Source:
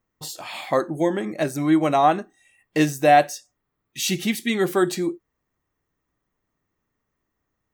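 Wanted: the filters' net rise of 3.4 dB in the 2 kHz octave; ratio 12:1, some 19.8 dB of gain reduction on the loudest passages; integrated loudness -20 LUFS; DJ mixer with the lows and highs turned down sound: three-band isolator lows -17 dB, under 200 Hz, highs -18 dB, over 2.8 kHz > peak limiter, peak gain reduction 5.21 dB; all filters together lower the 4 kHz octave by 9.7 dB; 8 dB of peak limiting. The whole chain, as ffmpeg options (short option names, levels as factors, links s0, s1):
-filter_complex "[0:a]equalizer=f=2000:t=o:g=7,equalizer=f=4000:t=o:g=-4.5,acompressor=threshold=0.0355:ratio=12,alimiter=level_in=1.06:limit=0.0631:level=0:latency=1,volume=0.944,acrossover=split=200 2800:gain=0.141 1 0.126[s0][s1][s2];[s0][s1][s2]amix=inputs=3:normalize=0,volume=8.91,alimiter=limit=0.376:level=0:latency=1"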